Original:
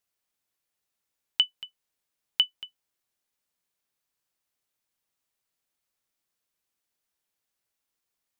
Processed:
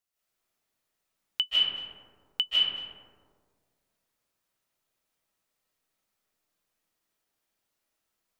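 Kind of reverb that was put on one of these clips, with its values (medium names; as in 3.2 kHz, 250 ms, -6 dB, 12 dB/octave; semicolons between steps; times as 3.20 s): algorithmic reverb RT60 1.8 s, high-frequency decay 0.3×, pre-delay 115 ms, DRR -9.5 dB; trim -5 dB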